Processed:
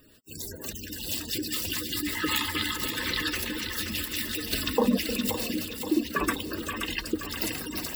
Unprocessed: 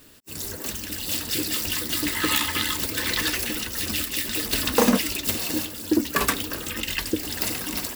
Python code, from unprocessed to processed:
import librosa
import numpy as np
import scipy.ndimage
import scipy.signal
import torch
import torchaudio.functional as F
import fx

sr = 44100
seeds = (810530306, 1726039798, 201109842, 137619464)

p1 = fx.spec_gate(x, sr, threshold_db=-15, keep='strong')
p2 = p1 + fx.echo_split(p1, sr, split_hz=480.0, low_ms=306, high_ms=525, feedback_pct=52, wet_db=-7.5, dry=0)
y = p2 * librosa.db_to_amplitude(-3.5)